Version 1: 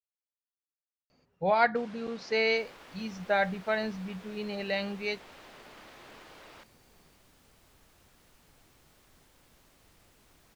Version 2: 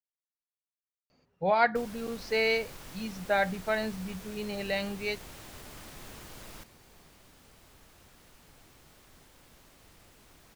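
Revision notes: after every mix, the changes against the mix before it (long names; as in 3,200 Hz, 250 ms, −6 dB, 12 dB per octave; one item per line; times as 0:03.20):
first sound: remove band-pass filter 330–3,500 Hz
second sound +4.5 dB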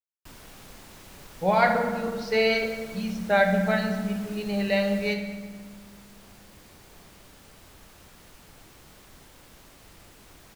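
first sound: entry −1.50 s
second sound +5.5 dB
reverb: on, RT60 1.7 s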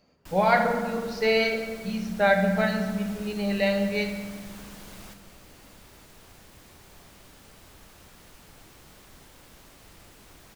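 speech: entry −1.10 s
first sound: send on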